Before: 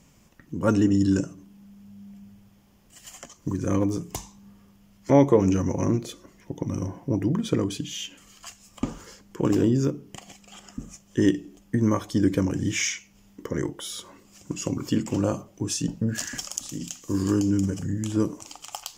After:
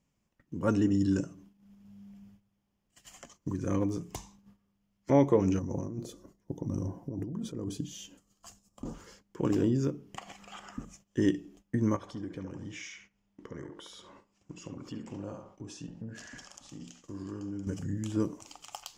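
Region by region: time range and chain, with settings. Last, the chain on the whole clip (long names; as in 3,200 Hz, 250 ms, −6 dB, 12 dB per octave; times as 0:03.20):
0:05.59–0:08.94: parametric band 2,300 Hz −13.5 dB 1.8 octaves + compressor whose output falls as the input rises −29 dBFS + notch filter 2,200 Hz, Q 26
0:10.17–0:10.85: parametric band 1,200 Hz +12 dB 2.1 octaves + upward compression, threshold −39 dBFS
0:11.96–0:17.67: downward compressor 2 to 1, threshold −39 dBFS + high-frequency loss of the air 52 metres + feedback echo with a band-pass in the loop 70 ms, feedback 51%, band-pass 840 Hz, level −3 dB
whole clip: noise gate −49 dBFS, range −14 dB; high-shelf EQ 7,600 Hz −7 dB; level −6 dB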